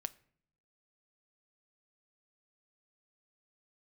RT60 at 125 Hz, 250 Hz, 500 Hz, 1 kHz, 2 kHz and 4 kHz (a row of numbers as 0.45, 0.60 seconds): 1.0, 0.90, 0.70, 0.55, 0.55, 0.40 seconds